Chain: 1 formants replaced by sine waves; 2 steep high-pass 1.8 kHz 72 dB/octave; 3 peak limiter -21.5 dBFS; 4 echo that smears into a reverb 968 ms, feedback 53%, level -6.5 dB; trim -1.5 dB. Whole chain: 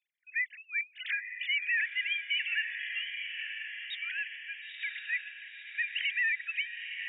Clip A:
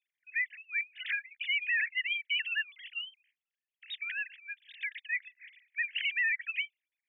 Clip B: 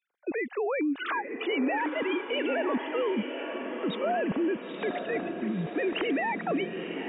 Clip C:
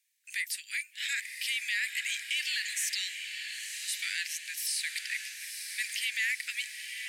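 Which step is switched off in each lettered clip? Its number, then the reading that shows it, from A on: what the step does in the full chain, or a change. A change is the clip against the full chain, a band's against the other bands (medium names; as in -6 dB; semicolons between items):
4, echo-to-direct -5.0 dB to none; 2, crest factor change -2.5 dB; 1, momentary loudness spread change -2 LU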